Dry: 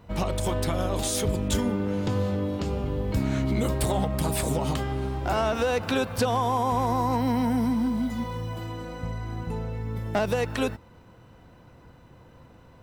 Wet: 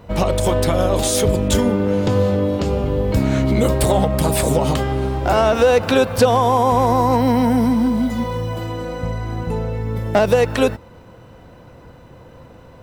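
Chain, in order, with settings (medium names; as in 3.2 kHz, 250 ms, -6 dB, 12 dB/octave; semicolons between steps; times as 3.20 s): peaking EQ 530 Hz +5 dB 0.66 oct; trim +8 dB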